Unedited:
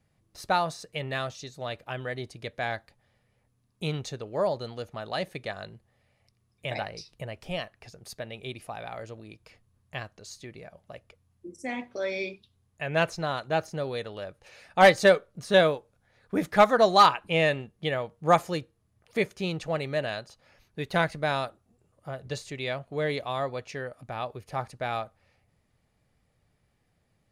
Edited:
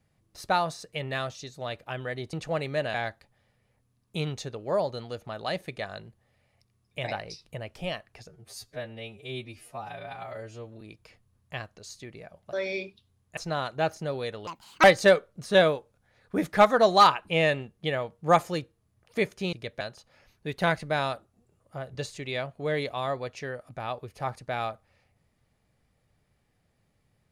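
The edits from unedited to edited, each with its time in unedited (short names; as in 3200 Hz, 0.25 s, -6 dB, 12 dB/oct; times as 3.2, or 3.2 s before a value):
2.33–2.61 swap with 19.52–20.13
7.96–9.22 stretch 2×
10.94–11.99 cut
12.83–13.09 cut
14.19–14.83 speed 174%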